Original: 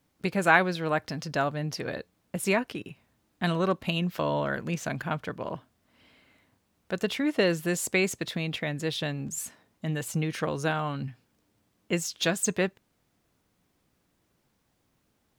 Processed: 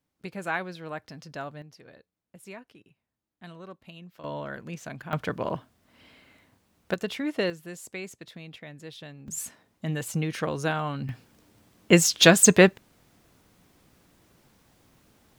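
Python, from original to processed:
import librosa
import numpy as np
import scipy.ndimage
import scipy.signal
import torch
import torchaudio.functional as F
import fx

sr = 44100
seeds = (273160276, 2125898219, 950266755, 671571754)

y = fx.gain(x, sr, db=fx.steps((0.0, -9.5), (1.62, -18.0), (4.24, -7.0), (5.13, 4.5), (6.94, -3.0), (7.5, -12.5), (9.28, 0.5), (11.09, 11.0)))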